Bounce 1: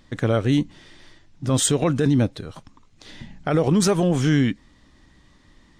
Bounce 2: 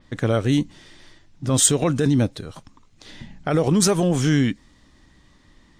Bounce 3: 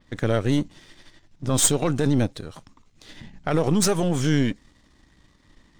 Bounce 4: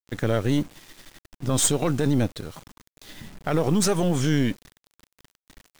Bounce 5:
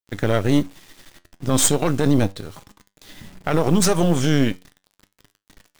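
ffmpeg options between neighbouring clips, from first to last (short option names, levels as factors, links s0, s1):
-af "adynamicequalizer=threshold=0.00794:dfrequency=4700:dqfactor=0.7:tfrequency=4700:tqfactor=0.7:attack=5:release=100:ratio=0.375:range=3:mode=boostabove:tftype=highshelf"
-af "aeval=exprs='if(lt(val(0),0),0.447*val(0),val(0))':c=same"
-filter_complex "[0:a]asplit=2[s0][s1];[s1]alimiter=limit=0.178:level=0:latency=1,volume=0.891[s2];[s0][s2]amix=inputs=2:normalize=0,acrusher=bits=6:mix=0:aa=0.000001,volume=0.562"
-filter_complex "[0:a]flanger=delay=9.7:depth=2:regen=76:speed=0.37:shape=triangular,asplit=2[s0][s1];[s1]asoftclip=type=tanh:threshold=0.0355,volume=0.447[s2];[s0][s2]amix=inputs=2:normalize=0,aeval=exprs='0.282*(cos(1*acos(clip(val(0)/0.282,-1,1)))-cos(1*PI/2))+0.02*(cos(7*acos(clip(val(0)/0.282,-1,1)))-cos(7*PI/2))':c=same,volume=2.37"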